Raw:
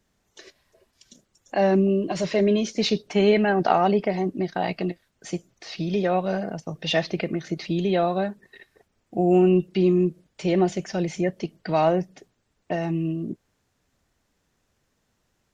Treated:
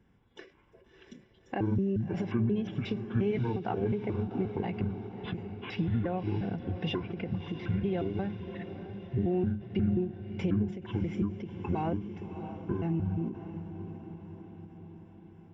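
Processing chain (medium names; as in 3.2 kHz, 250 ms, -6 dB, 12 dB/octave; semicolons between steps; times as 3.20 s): pitch shift switched off and on -10 st, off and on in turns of 178 ms; Savitzky-Golay filter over 25 samples; comb of notches 620 Hz; compression 3:1, threshold -40 dBFS, peak gain reduction 18.5 dB; bass shelf 300 Hz +8.5 dB; echo that smears into a reverb 638 ms, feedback 59%, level -10 dB; endings held to a fixed fall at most 140 dB/s; trim +2.5 dB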